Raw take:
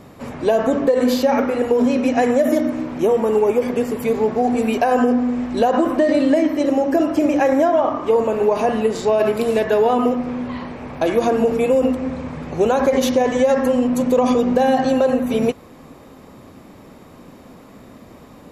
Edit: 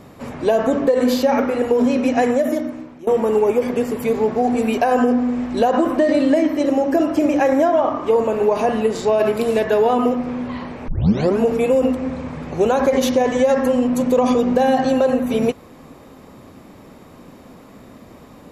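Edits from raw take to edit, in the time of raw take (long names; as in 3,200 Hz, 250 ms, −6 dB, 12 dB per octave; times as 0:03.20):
0:02.23–0:03.07: fade out, to −21 dB
0:10.88: tape start 0.52 s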